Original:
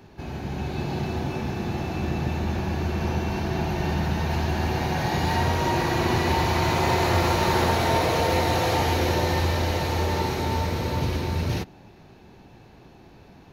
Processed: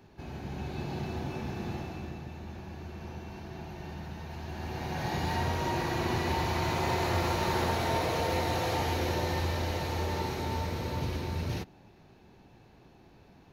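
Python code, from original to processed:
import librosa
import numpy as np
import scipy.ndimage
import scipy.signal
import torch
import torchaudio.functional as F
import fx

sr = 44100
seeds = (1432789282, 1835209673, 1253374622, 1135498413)

y = fx.gain(x, sr, db=fx.line((1.72, -7.5), (2.26, -16.0), (4.36, -16.0), (5.08, -7.5)))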